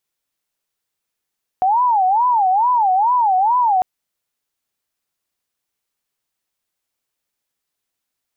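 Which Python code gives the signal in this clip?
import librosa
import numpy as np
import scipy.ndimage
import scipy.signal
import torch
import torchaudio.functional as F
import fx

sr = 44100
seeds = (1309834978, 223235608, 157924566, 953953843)

y = fx.siren(sr, length_s=2.2, kind='wail', low_hz=738.0, high_hz=1000.0, per_s=2.3, wave='sine', level_db=-12.0)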